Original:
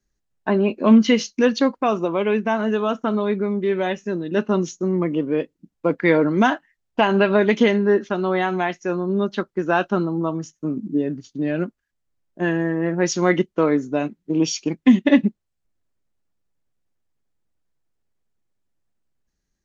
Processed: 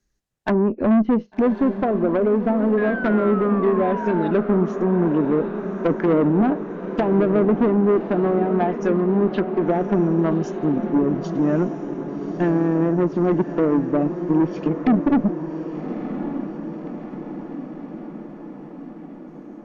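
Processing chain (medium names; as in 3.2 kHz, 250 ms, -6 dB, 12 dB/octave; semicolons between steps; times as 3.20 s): low-pass that closes with the level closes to 500 Hz, closed at -16 dBFS; level rider gain up to 3 dB; painted sound fall, 2.77–4.31 s, 830–1700 Hz -32 dBFS; valve stage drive 16 dB, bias 0.2; echo that smears into a reverb 1153 ms, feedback 63%, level -9.5 dB; trim +3 dB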